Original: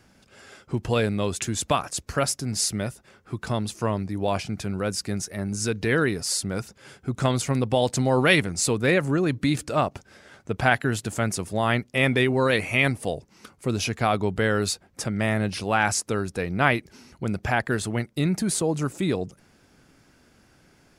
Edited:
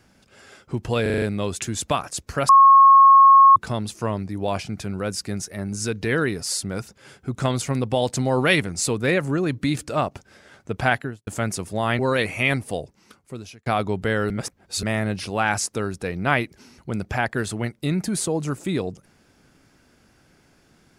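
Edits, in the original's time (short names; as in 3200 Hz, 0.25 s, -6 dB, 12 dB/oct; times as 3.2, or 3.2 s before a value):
1.02 stutter 0.04 s, 6 plays
2.29–3.36 bleep 1090 Hz -7.5 dBFS
10.7–11.07 studio fade out
11.79–12.33 cut
13.1–14 fade out
14.64–15.17 reverse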